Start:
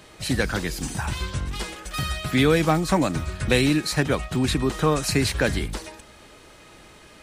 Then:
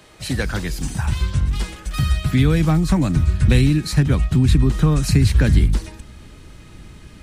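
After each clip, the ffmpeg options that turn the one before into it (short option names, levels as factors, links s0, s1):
-filter_complex "[0:a]asubboost=boost=6.5:cutoff=220,acrossover=split=130[s0][s1];[s1]acompressor=threshold=0.141:ratio=2.5[s2];[s0][s2]amix=inputs=2:normalize=0"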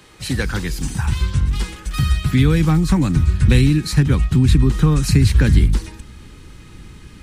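-af "equalizer=f=640:w=5.4:g=-11,volume=1.19"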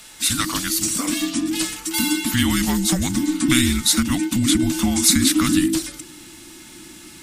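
-af "crystalizer=i=8:c=0,afreqshift=-370,volume=0.473"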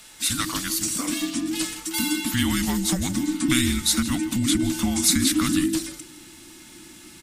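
-af "aecho=1:1:163:0.168,volume=0.631"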